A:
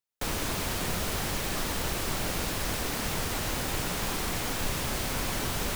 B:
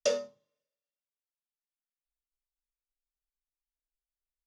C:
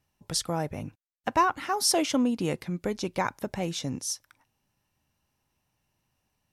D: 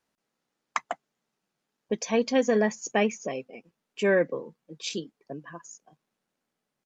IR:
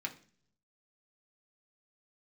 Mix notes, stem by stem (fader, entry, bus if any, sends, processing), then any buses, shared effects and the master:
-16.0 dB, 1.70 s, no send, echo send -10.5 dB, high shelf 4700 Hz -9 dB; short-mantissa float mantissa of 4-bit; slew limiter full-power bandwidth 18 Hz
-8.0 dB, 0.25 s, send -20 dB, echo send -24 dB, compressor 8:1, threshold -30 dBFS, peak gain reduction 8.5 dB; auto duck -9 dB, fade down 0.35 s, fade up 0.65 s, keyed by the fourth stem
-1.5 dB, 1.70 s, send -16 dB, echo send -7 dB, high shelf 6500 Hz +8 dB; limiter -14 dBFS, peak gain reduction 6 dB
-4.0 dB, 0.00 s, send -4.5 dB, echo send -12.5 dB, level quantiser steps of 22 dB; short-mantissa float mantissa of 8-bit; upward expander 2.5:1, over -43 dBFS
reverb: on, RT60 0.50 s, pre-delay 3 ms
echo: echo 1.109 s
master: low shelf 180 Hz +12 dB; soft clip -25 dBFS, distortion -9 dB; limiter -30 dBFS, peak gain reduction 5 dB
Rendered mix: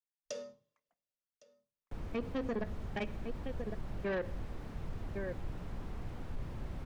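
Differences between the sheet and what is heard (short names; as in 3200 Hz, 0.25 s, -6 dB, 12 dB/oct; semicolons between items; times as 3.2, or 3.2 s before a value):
stem C: muted; reverb return -7.0 dB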